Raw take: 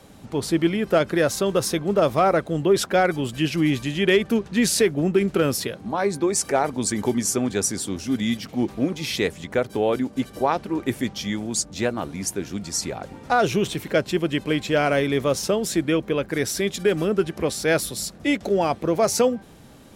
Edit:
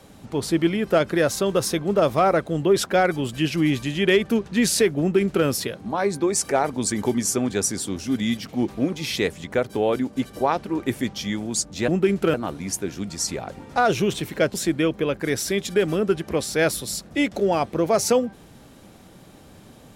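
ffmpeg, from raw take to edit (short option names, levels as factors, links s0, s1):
-filter_complex "[0:a]asplit=4[s0][s1][s2][s3];[s0]atrim=end=11.882[s4];[s1]atrim=start=4.998:end=5.462[s5];[s2]atrim=start=11.878:end=14.082[s6];[s3]atrim=start=15.628[s7];[s4][s5]acrossfade=d=0.004:c1=hsin:c2=hsin[s8];[s8][s6]acrossfade=d=0.004:c1=hsin:c2=hsin[s9];[s9][s7]acrossfade=d=0.004:c1=hsin:c2=hsin"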